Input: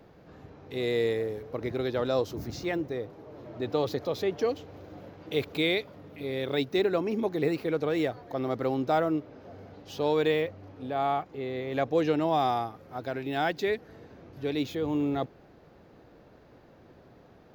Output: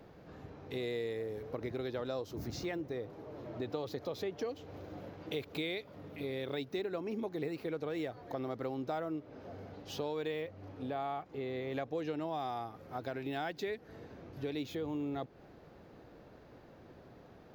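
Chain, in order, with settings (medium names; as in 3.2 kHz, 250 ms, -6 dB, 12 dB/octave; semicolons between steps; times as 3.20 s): compression 4:1, threshold -35 dBFS, peak gain reduction 12.5 dB; trim -1 dB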